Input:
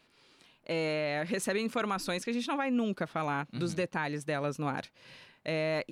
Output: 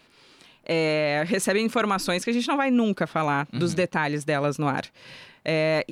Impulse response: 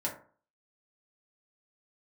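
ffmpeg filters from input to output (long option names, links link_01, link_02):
-af "volume=8.5dB"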